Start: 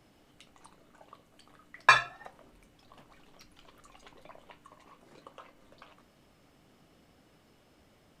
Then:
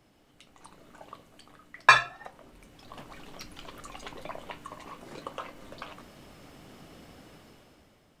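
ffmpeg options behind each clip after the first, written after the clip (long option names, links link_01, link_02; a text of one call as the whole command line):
ffmpeg -i in.wav -af "dynaudnorm=framelen=150:gausssize=11:maxgain=13dB,volume=-1dB" out.wav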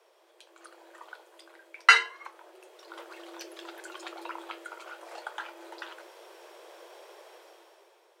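ffmpeg -i in.wav -af "afreqshift=330" out.wav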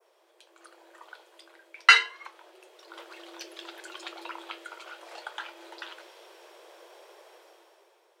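ffmpeg -i in.wav -af "adynamicequalizer=threshold=0.00178:dfrequency=3500:dqfactor=0.82:tfrequency=3500:tqfactor=0.82:attack=5:release=100:ratio=0.375:range=3.5:mode=boostabove:tftype=bell,volume=-2dB" out.wav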